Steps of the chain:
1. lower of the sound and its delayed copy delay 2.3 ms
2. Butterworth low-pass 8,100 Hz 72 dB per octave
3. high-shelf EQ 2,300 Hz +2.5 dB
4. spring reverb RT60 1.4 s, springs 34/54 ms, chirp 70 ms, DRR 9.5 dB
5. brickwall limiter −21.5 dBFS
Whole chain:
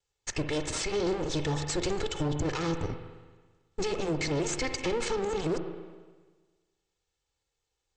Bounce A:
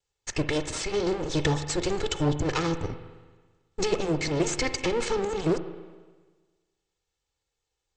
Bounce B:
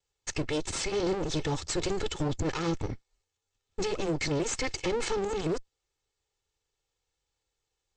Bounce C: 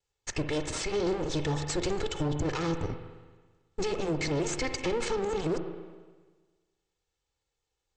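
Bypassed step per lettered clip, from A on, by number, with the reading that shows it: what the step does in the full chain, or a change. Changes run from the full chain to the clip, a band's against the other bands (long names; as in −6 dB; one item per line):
5, average gain reduction 2.0 dB
4, change in momentary loudness spread −4 LU
3, 8 kHz band −1.5 dB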